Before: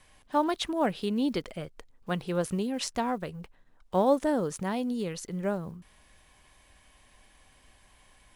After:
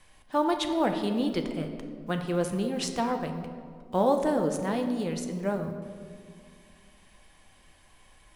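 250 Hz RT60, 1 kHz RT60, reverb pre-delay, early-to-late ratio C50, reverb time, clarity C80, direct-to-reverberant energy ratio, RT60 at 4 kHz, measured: 2.8 s, 1.8 s, 6 ms, 7.5 dB, 2.1 s, 8.5 dB, 5.0 dB, 1.1 s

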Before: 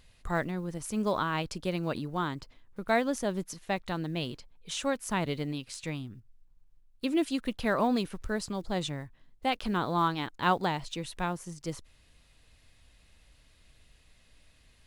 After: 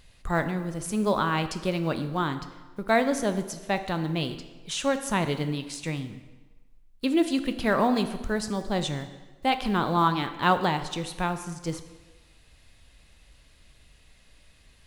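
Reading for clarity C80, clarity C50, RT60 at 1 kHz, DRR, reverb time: 12.5 dB, 11.0 dB, 1.3 s, 8.5 dB, 1.3 s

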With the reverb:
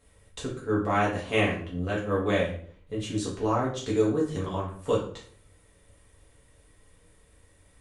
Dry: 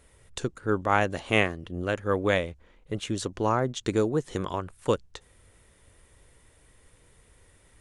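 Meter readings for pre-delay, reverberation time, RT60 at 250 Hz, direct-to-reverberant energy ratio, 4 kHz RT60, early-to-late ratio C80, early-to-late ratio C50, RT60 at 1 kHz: 3 ms, 0.55 s, 0.60 s, -6.0 dB, 0.40 s, 10.5 dB, 5.5 dB, 0.45 s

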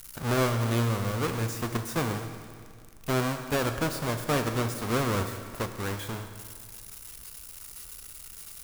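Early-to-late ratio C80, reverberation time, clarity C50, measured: 9.5 dB, 2.1 s, 8.5 dB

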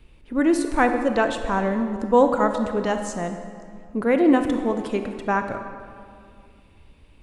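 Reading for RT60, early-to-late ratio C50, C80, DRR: 2.2 s, 7.0 dB, 8.5 dB, 6.5 dB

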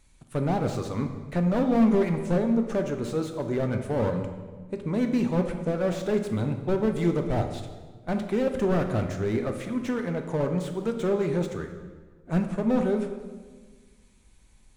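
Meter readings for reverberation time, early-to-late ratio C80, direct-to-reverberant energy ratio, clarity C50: 1.5 s, 9.5 dB, 5.0 dB, 7.5 dB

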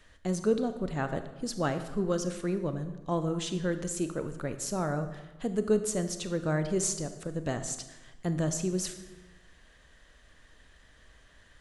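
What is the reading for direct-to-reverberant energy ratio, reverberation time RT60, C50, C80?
9.0 dB, 1.2 s, 10.5 dB, 12.0 dB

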